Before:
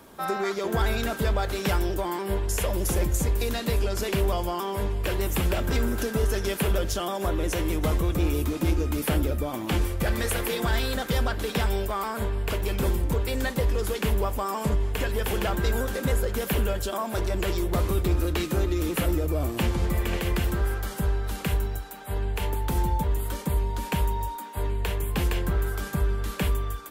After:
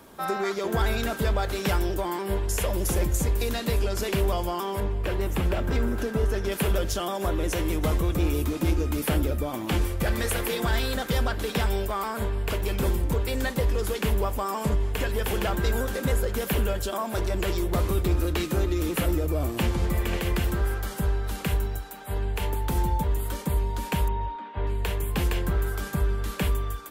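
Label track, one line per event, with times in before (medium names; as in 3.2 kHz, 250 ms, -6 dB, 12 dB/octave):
4.800000	6.520000	treble shelf 3.5 kHz -10 dB
24.080000	24.670000	low-pass 3.3 kHz 24 dB/octave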